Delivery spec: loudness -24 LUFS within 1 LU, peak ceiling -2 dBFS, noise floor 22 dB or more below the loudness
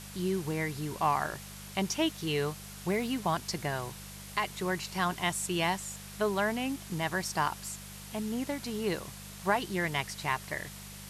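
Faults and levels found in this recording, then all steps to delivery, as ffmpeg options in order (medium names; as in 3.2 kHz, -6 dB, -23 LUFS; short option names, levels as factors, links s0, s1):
hum 50 Hz; highest harmonic 200 Hz; hum level -46 dBFS; noise floor -46 dBFS; noise floor target -55 dBFS; loudness -33.0 LUFS; peak level -14.5 dBFS; loudness target -24.0 LUFS
-> -af "bandreject=f=50:t=h:w=4,bandreject=f=100:t=h:w=4,bandreject=f=150:t=h:w=4,bandreject=f=200:t=h:w=4"
-af "afftdn=nr=9:nf=-46"
-af "volume=2.82"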